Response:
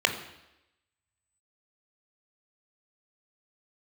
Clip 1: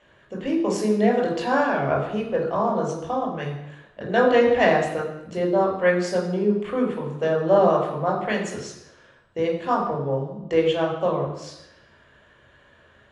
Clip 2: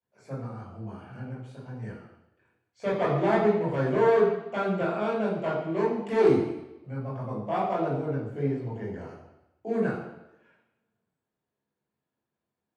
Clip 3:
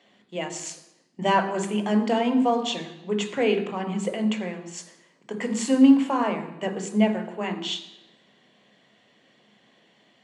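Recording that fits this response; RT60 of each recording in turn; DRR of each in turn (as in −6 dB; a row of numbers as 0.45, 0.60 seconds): 3; 0.90, 0.90, 0.90 seconds; −1.5, −7.0, 5.0 decibels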